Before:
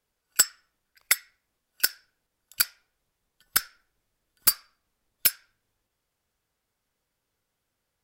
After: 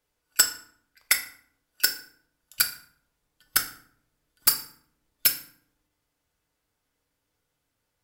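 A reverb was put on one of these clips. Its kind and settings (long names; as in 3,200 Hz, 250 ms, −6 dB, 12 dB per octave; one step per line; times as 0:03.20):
feedback delay network reverb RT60 0.59 s, low-frequency decay 1.45×, high-frequency decay 0.7×, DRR 4.5 dB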